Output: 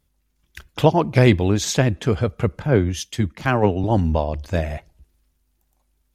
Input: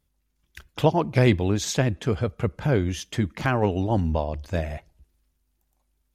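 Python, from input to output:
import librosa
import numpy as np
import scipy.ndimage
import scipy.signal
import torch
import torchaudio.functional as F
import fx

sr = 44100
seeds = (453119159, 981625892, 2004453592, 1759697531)

y = fx.band_widen(x, sr, depth_pct=100, at=(2.62, 3.84))
y = y * 10.0 ** (4.5 / 20.0)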